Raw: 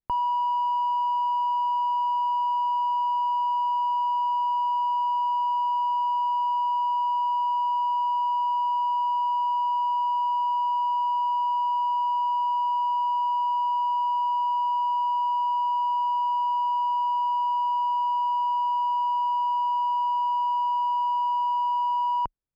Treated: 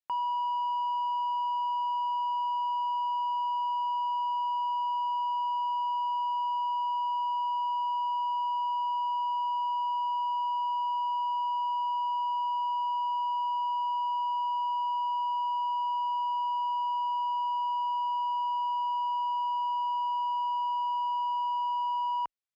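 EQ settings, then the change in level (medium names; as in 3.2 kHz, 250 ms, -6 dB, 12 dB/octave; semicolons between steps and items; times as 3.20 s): band-pass filter 3.1 kHz, Q 0.53; 0.0 dB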